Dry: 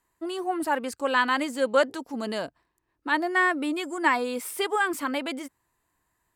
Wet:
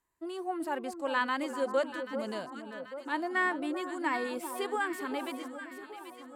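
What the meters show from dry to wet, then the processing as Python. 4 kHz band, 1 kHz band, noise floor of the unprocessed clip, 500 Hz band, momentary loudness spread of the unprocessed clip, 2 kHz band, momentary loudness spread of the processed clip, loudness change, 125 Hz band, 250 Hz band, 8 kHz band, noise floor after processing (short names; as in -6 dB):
-9.0 dB, -7.0 dB, -76 dBFS, -6.0 dB, 11 LU, -7.5 dB, 12 LU, -7.5 dB, n/a, -6.0 dB, -9.5 dB, -50 dBFS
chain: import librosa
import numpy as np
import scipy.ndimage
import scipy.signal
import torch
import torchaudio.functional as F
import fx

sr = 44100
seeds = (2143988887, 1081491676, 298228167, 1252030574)

y = fx.hpss(x, sr, part='percussive', gain_db=-5)
y = fx.echo_alternate(y, sr, ms=392, hz=1200.0, feedback_pct=73, wet_db=-8.0)
y = y * 10.0 ** (-6.5 / 20.0)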